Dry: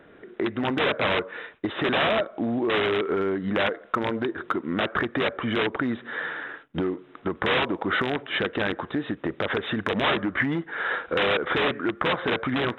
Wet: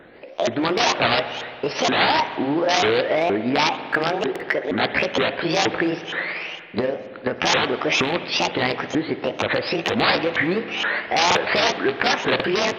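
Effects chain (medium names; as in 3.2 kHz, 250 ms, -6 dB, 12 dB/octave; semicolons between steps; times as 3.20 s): sawtooth pitch modulation +10.5 st, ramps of 471 ms; spring tank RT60 2.4 s, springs 56 ms, chirp 80 ms, DRR 11 dB; buffer glitch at 4.31/11.27/12.35 s, samples 2048, times 1; trim +5.5 dB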